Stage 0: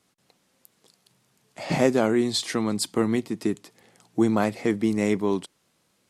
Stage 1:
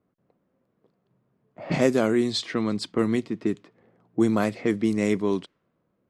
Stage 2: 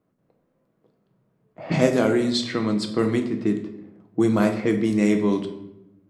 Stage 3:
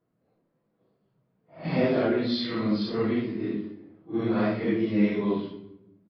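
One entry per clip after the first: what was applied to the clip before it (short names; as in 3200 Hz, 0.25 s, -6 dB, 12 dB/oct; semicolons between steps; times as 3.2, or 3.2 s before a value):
low-pass opened by the level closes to 860 Hz, open at -17 dBFS; bell 830 Hz -7 dB 0.32 oct
shoebox room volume 250 m³, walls mixed, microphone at 0.64 m; gain +1 dB
phase scrambler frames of 0.2 s; downsampling 11025 Hz; gain -4.5 dB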